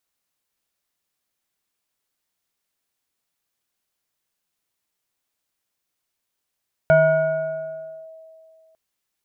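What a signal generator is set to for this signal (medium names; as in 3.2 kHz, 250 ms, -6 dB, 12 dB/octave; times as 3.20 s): FM tone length 1.85 s, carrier 644 Hz, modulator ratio 1.24, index 0.71, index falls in 1.19 s linear, decay 2.46 s, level -9.5 dB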